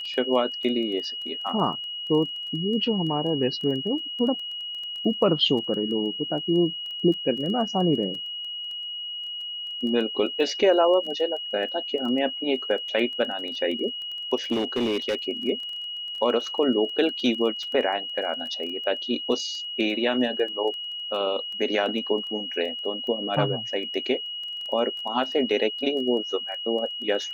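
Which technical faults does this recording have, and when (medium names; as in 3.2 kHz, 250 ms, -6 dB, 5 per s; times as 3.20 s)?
crackle 13 per s -33 dBFS
whine 2.9 kHz -31 dBFS
14.51–15.15 s: clipped -20.5 dBFS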